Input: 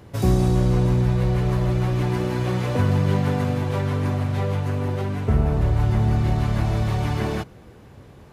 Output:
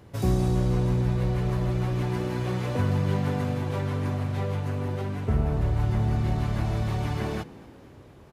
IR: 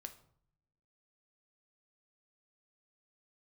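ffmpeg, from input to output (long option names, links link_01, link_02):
-filter_complex "[0:a]asplit=6[link_01][link_02][link_03][link_04][link_05][link_06];[link_02]adelay=237,afreqshift=56,volume=-21.5dB[link_07];[link_03]adelay=474,afreqshift=112,volume=-25.5dB[link_08];[link_04]adelay=711,afreqshift=168,volume=-29.5dB[link_09];[link_05]adelay=948,afreqshift=224,volume=-33.5dB[link_10];[link_06]adelay=1185,afreqshift=280,volume=-37.6dB[link_11];[link_01][link_07][link_08][link_09][link_10][link_11]amix=inputs=6:normalize=0,volume=-5dB"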